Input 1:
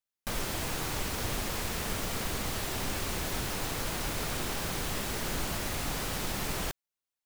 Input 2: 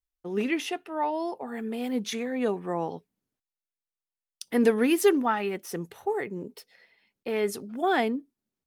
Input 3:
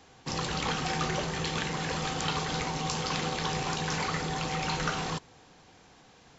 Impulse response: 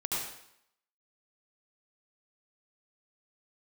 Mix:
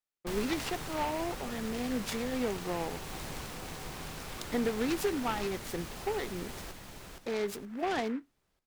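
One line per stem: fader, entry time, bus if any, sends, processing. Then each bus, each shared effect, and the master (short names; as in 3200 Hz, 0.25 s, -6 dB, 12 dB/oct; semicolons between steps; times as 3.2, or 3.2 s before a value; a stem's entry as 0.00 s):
-3.0 dB, 0.00 s, no send, echo send -11.5 dB, auto duck -8 dB, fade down 1.20 s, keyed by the second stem
-3.5 dB, 0.00 s, no send, no echo send, gate with hold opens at -45 dBFS; compressor 4:1, threshold -25 dBFS, peak gain reduction 8.5 dB
-12.0 dB, 0.30 s, no send, no echo send, compressor, threshold -32 dBFS, peak gain reduction 7 dB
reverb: off
echo: feedback echo 0.47 s, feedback 32%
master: noise-modulated delay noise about 1400 Hz, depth 0.058 ms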